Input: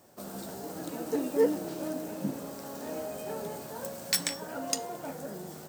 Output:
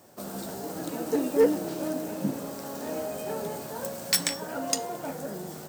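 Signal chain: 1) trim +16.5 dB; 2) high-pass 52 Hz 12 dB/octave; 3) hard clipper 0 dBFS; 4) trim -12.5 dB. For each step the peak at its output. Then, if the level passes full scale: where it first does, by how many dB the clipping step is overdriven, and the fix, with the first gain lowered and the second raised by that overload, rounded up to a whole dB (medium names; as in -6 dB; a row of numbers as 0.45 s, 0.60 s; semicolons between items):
+6.5 dBFS, +6.5 dBFS, 0.0 dBFS, -12.5 dBFS; step 1, 6.5 dB; step 1 +9.5 dB, step 4 -5.5 dB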